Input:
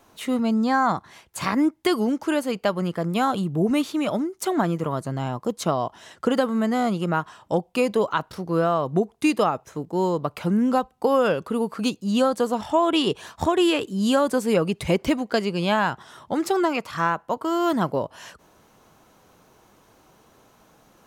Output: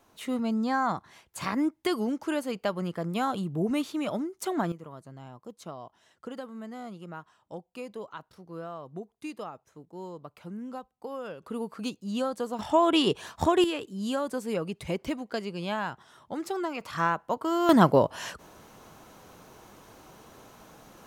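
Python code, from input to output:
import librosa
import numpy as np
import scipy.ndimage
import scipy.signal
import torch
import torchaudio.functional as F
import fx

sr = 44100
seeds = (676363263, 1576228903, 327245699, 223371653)

y = fx.gain(x, sr, db=fx.steps((0.0, -6.5), (4.72, -18.0), (11.43, -9.5), (12.59, -2.0), (13.64, -10.0), (16.81, -3.5), (17.69, 4.5)))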